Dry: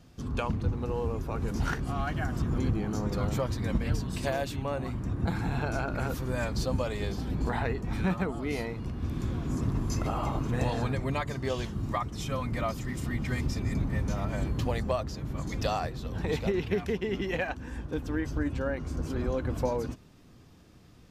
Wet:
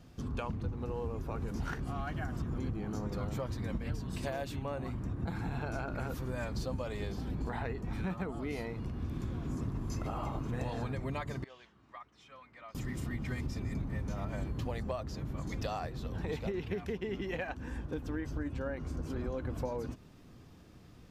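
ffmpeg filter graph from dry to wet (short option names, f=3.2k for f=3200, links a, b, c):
-filter_complex "[0:a]asettb=1/sr,asplit=3[a][b][c];[a]atrim=end=11.444[d];[b]atrim=start=11.44:end=12.75,asetpts=PTS-STARTPTS,afade=t=in:d=0.004:c=qsin,afade=t=out:st=1.306:d=0.004:c=qsin,lowpass=2k,aderivative,aeval=exprs='val(0)+0.000224*(sin(2*PI*60*n/s)+sin(2*PI*2*60*n/s)/2+sin(2*PI*3*60*n/s)/3+sin(2*PI*4*60*n/s)/4+sin(2*PI*5*60*n/s)/5)':c=same[e];[c]atrim=start=12.746[f];[d][e]acrossfade=d=0.004:c1=hsin:c2=qsin[g];[g][f]acrossfade=d=0.004:c1=qsin:c2=hsin,equalizer=f=7.5k:t=o:w=2.5:g=-3,acompressor=threshold=-36dB:ratio=2.5"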